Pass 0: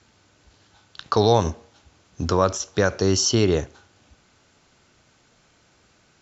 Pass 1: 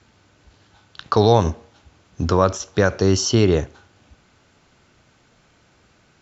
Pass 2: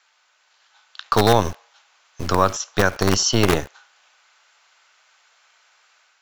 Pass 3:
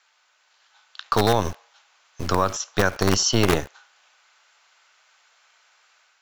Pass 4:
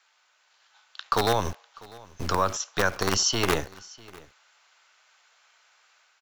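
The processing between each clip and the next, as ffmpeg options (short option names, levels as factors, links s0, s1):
-af "bass=f=250:g=2,treble=f=4000:g=-5,volume=1.33"
-filter_complex "[0:a]acrossover=split=770[s0][s1];[s0]acrusher=bits=3:dc=4:mix=0:aa=0.000001[s2];[s1]dynaudnorm=f=500:g=3:m=1.58[s3];[s2][s3]amix=inputs=2:normalize=0,volume=0.891"
-af "alimiter=limit=0.562:level=0:latency=1:release=77,volume=0.841"
-filter_complex "[0:a]acrossover=split=470[s0][s1];[s0]asoftclip=type=hard:threshold=0.0841[s2];[s2][s1]amix=inputs=2:normalize=0,aecho=1:1:648:0.075,volume=0.794"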